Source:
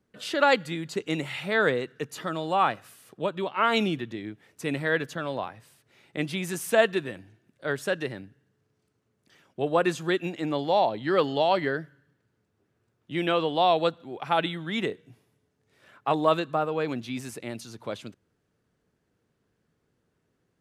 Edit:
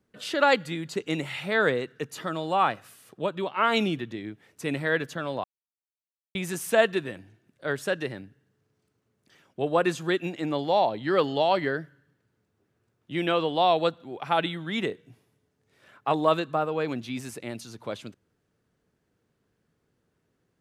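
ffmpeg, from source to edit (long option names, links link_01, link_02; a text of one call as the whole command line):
ffmpeg -i in.wav -filter_complex "[0:a]asplit=3[link_01][link_02][link_03];[link_01]atrim=end=5.44,asetpts=PTS-STARTPTS,afade=type=out:start_time=5.436:duration=0.004:curve=hsin[link_04];[link_02]atrim=start=5.44:end=6.35,asetpts=PTS-STARTPTS,volume=0[link_05];[link_03]atrim=start=6.35,asetpts=PTS-STARTPTS,afade=type=in:duration=0.004:curve=hsin[link_06];[link_04][link_05][link_06]concat=n=3:v=0:a=1" out.wav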